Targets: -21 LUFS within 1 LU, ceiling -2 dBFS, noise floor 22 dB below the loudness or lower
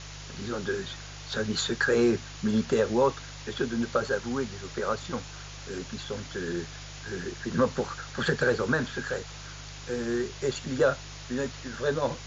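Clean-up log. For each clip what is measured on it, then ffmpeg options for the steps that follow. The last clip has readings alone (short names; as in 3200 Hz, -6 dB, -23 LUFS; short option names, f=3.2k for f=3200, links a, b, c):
hum 50 Hz; harmonics up to 150 Hz; hum level -42 dBFS; noise floor -43 dBFS; noise floor target -52 dBFS; loudness -29.5 LUFS; peak -12.0 dBFS; loudness target -21.0 LUFS
-> -af "bandreject=f=50:t=h:w=4,bandreject=f=100:t=h:w=4,bandreject=f=150:t=h:w=4"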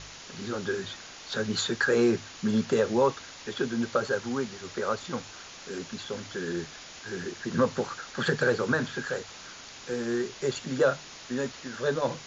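hum none; noise floor -46 dBFS; noise floor target -52 dBFS
-> -af "afftdn=nr=6:nf=-46"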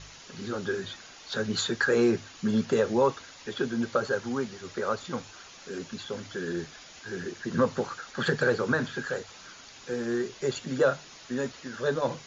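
noise floor -49 dBFS; noise floor target -52 dBFS
-> -af "afftdn=nr=6:nf=-49"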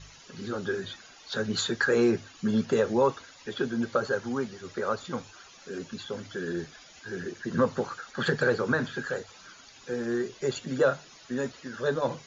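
noise floor -52 dBFS; loudness -29.5 LUFS; peak -12.5 dBFS; loudness target -21.0 LUFS
-> -af "volume=8.5dB"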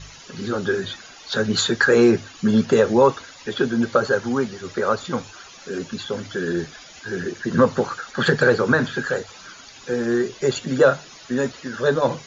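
loudness -21.0 LUFS; peak -4.0 dBFS; noise floor -44 dBFS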